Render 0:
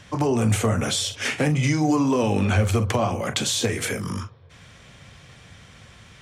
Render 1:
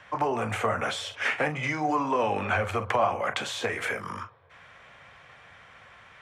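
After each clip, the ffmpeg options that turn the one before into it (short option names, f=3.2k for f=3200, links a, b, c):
-filter_complex "[0:a]acrossover=split=570 2400:gain=0.126 1 0.112[a][b][c];[a][b][c]amix=inputs=3:normalize=0,volume=3.5dB"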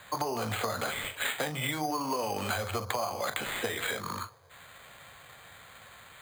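-af "acompressor=threshold=-28dB:ratio=10,acrusher=samples=8:mix=1:aa=0.000001"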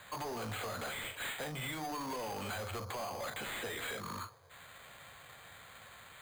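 -af "asoftclip=type=tanh:threshold=-34dB,volume=-2.5dB"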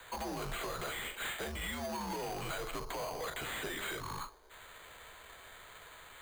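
-filter_complex "[0:a]afreqshift=-77,acrossover=split=210|1200|7600[a][b][c][d];[a]acrusher=samples=32:mix=1:aa=0.000001[e];[e][b][c][d]amix=inputs=4:normalize=0,volume=1dB"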